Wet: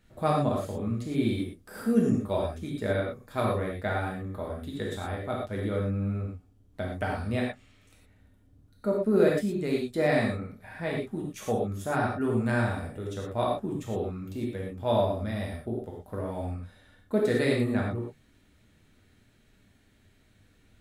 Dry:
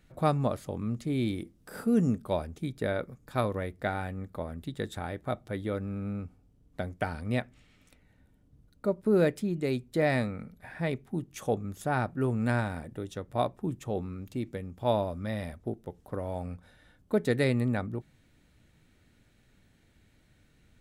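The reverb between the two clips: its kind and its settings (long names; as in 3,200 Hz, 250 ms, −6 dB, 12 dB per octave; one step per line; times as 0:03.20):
reverb whose tail is shaped and stops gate 140 ms flat, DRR −3 dB
level −2.5 dB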